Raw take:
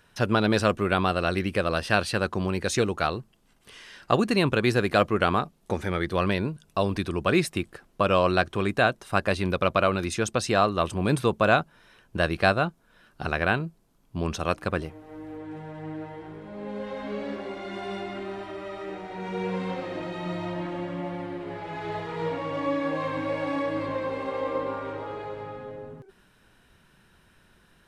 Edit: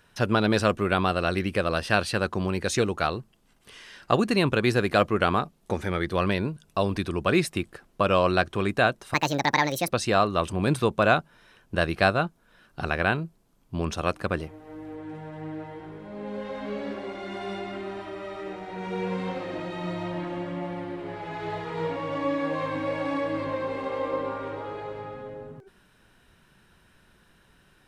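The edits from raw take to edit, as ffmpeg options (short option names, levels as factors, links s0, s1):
-filter_complex "[0:a]asplit=3[s0][s1][s2];[s0]atrim=end=9.144[s3];[s1]atrim=start=9.14:end=10.32,asetpts=PTS-STARTPTS,asetrate=68355,aresample=44100[s4];[s2]atrim=start=10.316[s5];[s3][s4]acrossfade=d=0.004:c1=hsin:c2=hsin[s6];[s6][s5]acrossfade=d=0.004:c1=hsin:c2=hsin"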